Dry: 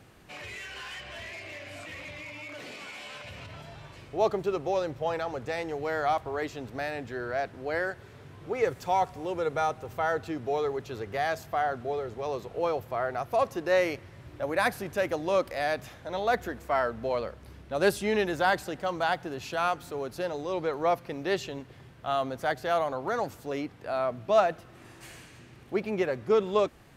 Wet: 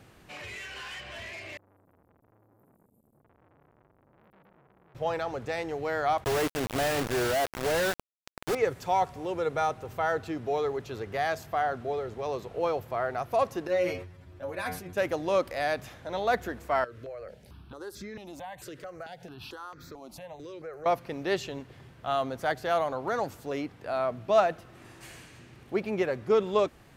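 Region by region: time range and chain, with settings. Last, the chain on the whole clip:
1.57–4.95 inverse Chebyshev band-stop 680–5300 Hz, stop band 60 dB + compressor 3:1, threshold -53 dBFS + core saturation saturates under 1300 Hz
6.24–8.55 bell 4800 Hz -11.5 dB 1.3 oct + companded quantiser 2-bit
13.67–14.97 low shelf 170 Hz +7 dB + metallic resonator 88 Hz, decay 0.23 s, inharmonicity 0.002 + sustainer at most 82 dB/s
16.84–20.86 compressor 5:1, threshold -36 dBFS + step phaser 4.5 Hz 210–2900 Hz
whole clip: dry

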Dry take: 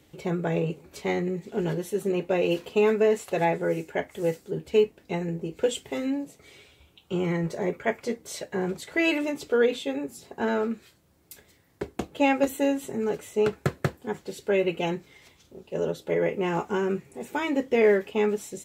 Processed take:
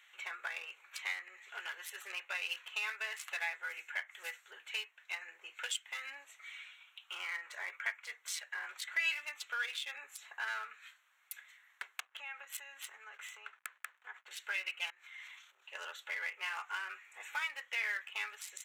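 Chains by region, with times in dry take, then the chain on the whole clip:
12–14.31 backlash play -47 dBFS + compressor 20:1, threshold -34 dBFS + three-band expander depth 40%
14.9–15.63 compressor 4:1, threshold -48 dBFS + transient shaper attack -4 dB, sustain +10 dB
whole clip: Wiener smoothing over 9 samples; HPF 1400 Hz 24 dB/oct; compressor 2:1, threshold -52 dBFS; gain +9 dB

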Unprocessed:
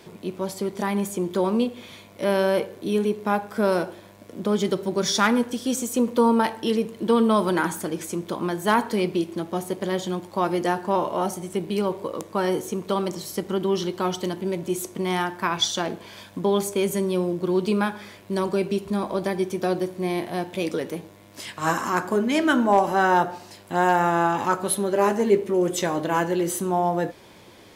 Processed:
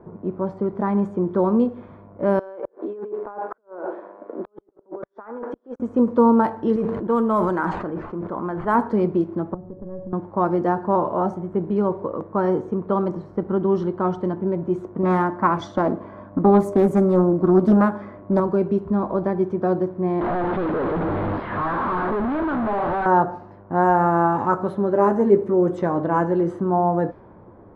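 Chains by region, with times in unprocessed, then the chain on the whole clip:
2.39–5.8 HPF 340 Hz 24 dB/oct + negative-ratio compressor -34 dBFS + flipped gate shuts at -20 dBFS, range -37 dB
6.76–8.75 low shelf 480 Hz -8 dB + careless resampling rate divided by 4×, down none, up hold + sustainer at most 30 dB/s
9.54–10.13 compressor 4:1, threshold -31 dBFS + tilt -4.5 dB/oct + resonator 560 Hz, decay 0.4 s, mix 80%
15.03–18.4 high shelf 8200 Hz +8.5 dB + small resonant body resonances 280/600/1100/2000 Hz, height 9 dB, ringing for 30 ms + Doppler distortion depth 0.38 ms
20.21–23.06 infinite clipping + steep low-pass 4100 Hz + low shelf 200 Hz -7.5 dB
whole clip: resonant high shelf 1900 Hz -12.5 dB, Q 1.5; low-pass opened by the level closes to 1200 Hz, open at -15 dBFS; tilt -2 dB/oct

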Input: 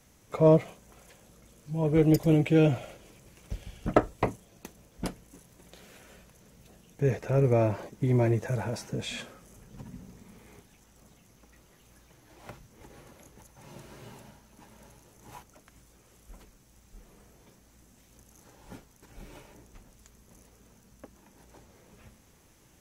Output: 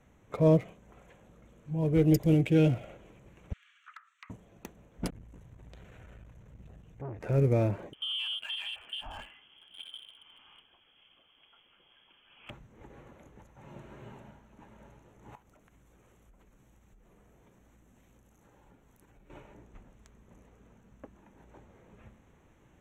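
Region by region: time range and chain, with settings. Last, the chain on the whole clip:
3.53–4.3 Chebyshev band-pass 1200–9900 Hz, order 5 + high shelf 6000 Hz -8 dB + compressor 16:1, threshold -44 dBFS
5.1–7.21 resonant low shelf 150 Hz +10 dB, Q 1.5 + compressor 3:1, threshold -37 dBFS + core saturation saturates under 480 Hz
7.93–12.5 compressor 2.5:1, threshold -36 dBFS + notch 1400 Hz, Q 9.2 + inverted band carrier 3300 Hz
15.35–19.3 compressor 10:1, threshold -56 dBFS + high shelf 7800 Hz +11 dB
whole clip: Wiener smoothing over 9 samples; dynamic EQ 930 Hz, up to -7 dB, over -41 dBFS, Q 0.72

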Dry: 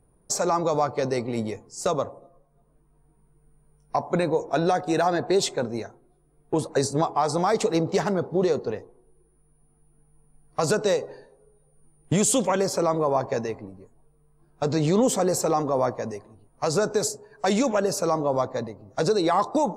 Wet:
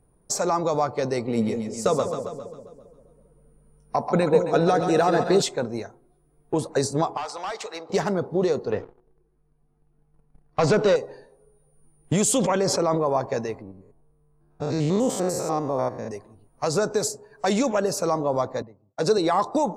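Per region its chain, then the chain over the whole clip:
1.27–5.42 small resonant body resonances 210/460/1300/2900 Hz, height 7 dB + split-band echo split 590 Hz, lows 0.199 s, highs 0.135 s, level -6.5 dB
7.17–7.9 HPF 940 Hz + overloaded stage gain 26 dB + air absorption 62 m
8.72–10.96 sample leveller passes 2 + air absorption 130 m
12.37–13.06 air absorption 52 m + sustainer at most 32 dB/s
13.62–16.11 stepped spectrum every 0.1 s + mismatched tape noise reduction decoder only
18.62–19.18 HPF 120 Hz + expander -49 dBFS + three-band expander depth 100%
whole clip: dry

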